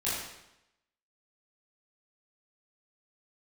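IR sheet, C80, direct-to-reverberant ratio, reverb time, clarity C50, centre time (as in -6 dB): 3.0 dB, -10.5 dB, 0.85 s, 0.0 dB, 72 ms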